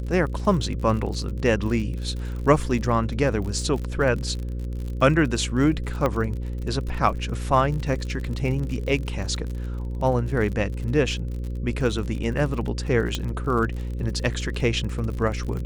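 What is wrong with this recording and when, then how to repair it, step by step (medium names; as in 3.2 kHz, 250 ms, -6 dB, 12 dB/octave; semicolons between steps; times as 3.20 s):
buzz 60 Hz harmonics 9 -29 dBFS
crackle 48 per s -31 dBFS
6.06 s: pop -11 dBFS
13.15 s: pop -11 dBFS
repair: de-click; de-hum 60 Hz, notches 9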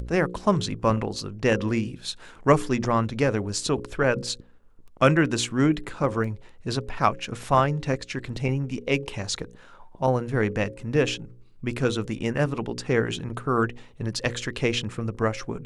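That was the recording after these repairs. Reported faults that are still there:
6.06 s: pop
13.15 s: pop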